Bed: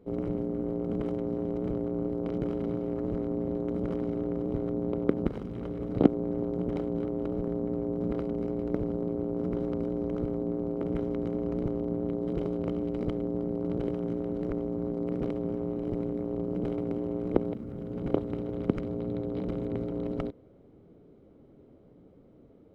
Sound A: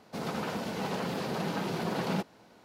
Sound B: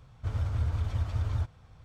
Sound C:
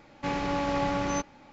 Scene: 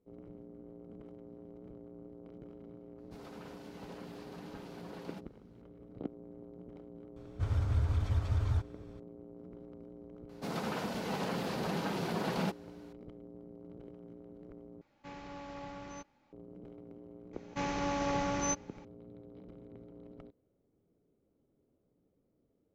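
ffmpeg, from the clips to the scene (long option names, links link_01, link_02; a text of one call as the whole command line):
ffmpeg -i bed.wav -i cue0.wav -i cue1.wav -i cue2.wav -filter_complex "[1:a]asplit=2[link_01][link_02];[3:a]asplit=2[link_03][link_04];[0:a]volume=-19.5dB[link_05];[2:a]bandreject=frequency=2900:width=30[link_06];[link_04]equalizer=frequency=6100:width_type=o:width=0.22:gain=9[link_07];[link_05]asplit=2[link_08][link_09];[link_08]atrim=end=14.814[link_10];[link_03]atrim=end=1.52,asetpts=PTS-STARTPTS,volume=-17.5dB[link_11];[link_09]atrim=start=16.326[link_12];[link_01]atrim=end=2.64,asetpts=PTS-STARTPTS,volume=-17dB,afade=type=in:duration=0.004:curve=hsin,afade=type=out:start_time=2.636:duration=0.004:curve=hsin,adelay=2980[link_13];[link_06]atrim=end=1.84,asetpts=PTS-STARTPTS,volume=-1dB,afade=type=in:duration=0.004:curve=hsin,afade=type=out:start_time=1.836:duration=0.004:curve=hsin,adelay=7160[link_14];[link_02]atrim=end=2.64,asetpts=PTS-STARTPTS,volume=-2.5dB,afade=type=in:duration=0.004:curve=hsin,afade=type=out:start_time=2.636:duration=0.004:curve=hsin,adelay=10290[link_15];[link_07]atrim=end=1.52,asetpts=PTS-STARTPTS,volume=-5dB,afade=type=in:duration=0.004:curve=hsin,afade=type=out:start_time=1.516:duration=0.004:curve=hsin,adelay=17330[link_16];[link_10][link_11]acrossfade=duration=0.004:curve1=hsin:curve2=hsin[link_17];[link_17][link_12]acrossfade=duration=0.004:curve1=hsin:curve2=hsin[link_18];[link_18][link_13][link_14][link_15][link_16]amix=inputs=5:normalize=0" out.wav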